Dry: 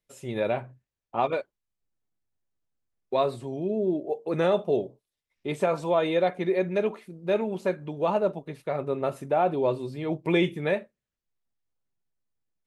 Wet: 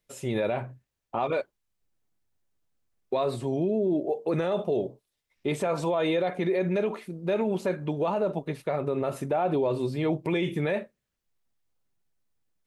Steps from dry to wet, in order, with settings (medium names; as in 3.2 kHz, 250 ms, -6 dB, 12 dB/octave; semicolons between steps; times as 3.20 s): peak limiter -24 dBFS, peak gain reduction 11.5 dB; trim +5.5 dB